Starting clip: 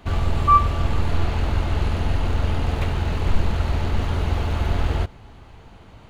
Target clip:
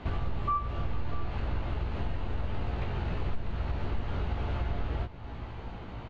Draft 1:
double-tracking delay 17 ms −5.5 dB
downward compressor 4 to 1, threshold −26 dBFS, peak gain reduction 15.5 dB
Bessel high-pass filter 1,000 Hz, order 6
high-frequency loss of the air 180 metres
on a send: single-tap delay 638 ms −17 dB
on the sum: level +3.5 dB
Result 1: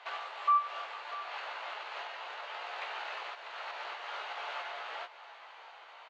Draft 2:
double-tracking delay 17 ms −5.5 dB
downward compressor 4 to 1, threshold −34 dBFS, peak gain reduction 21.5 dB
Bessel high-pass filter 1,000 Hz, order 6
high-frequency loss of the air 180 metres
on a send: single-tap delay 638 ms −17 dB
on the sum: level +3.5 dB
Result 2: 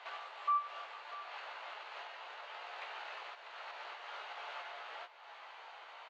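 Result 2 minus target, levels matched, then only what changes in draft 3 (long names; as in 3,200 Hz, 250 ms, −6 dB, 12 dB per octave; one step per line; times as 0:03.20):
1,000 Hz band +6.0 dB
remove: Bessel high-pass filter 1,000 Hz, order 6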